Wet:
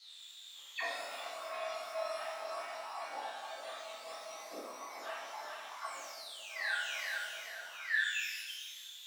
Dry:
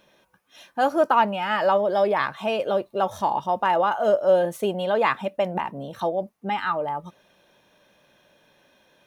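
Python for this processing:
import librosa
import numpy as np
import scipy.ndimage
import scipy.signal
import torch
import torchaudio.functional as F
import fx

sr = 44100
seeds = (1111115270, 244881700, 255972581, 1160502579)

y = fx.octave_mirror(x, sr, pivot_hz=1800.0)
y = fx.low_shelf(y, sr, hz=470.0, db=-6.5)
y = fx.quant_companded(y, sr, bits=6)
y = fx.dispersion(y, sr, late='lows', ms=55.0, hz=410.0, at=(1.17, 1.73))
y = fx.spec_paint(y, sr, seeds[0], shape='fall', start_s=5.84, length_s=0.91, low_hz=1400.0, high_hz=8800.0, level_db=-19.0)
y = fx.echo_thinned(y, sr, ms=430, feedback_pct=43, hz=750.0, wet_db=-3)
y = fx.quant_dither(y, sr, seeds[1], bits=8, dither='triangular')
y = fx.high_shelf(y, sr, hz=3200.0, db=-6.0)
y = fx.auto_wah(y, sr, base_hz=650.0, top_hz=4500.0, q=17.0, full_db=-29.5, direction='down')
y = fx.level_steps(y, sr, step_db=13, at=(5.98, 6.56))
y = fx.rev_shimmer(y, sr, seeds[2], rt60_s=1.0, semitones=12, shimmer_db=-8, drr_db=-7.5)
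y = y * librosa.db_to_amplitude(9.0)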